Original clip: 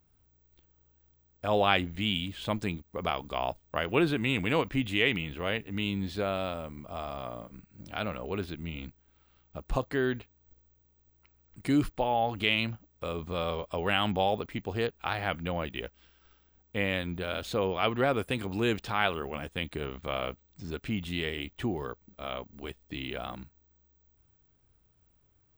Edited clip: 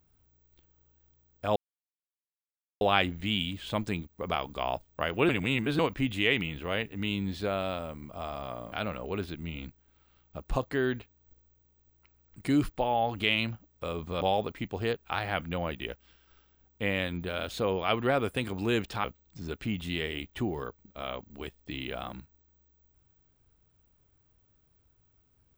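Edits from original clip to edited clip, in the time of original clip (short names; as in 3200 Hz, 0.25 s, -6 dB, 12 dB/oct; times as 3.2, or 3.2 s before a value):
1.56 insert silence 1.25 s
4.04–4.54 reverse
7.47–7.92 cut
13.41–14.15 cut
18.98–20.27 cut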